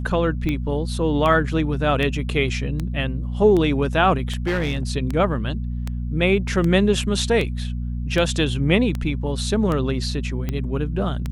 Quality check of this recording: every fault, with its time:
hum 60 Hz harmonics 4 -26 dBFS
tick 78 rpm -13 dBFS
4.46–4.88 s: clipped -18 dBFS

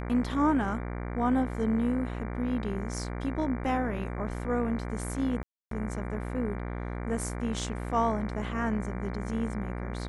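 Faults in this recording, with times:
buzz 60 Hz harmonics 39 -35 dBFS
5.43–5.71 s: dropout 283 ms

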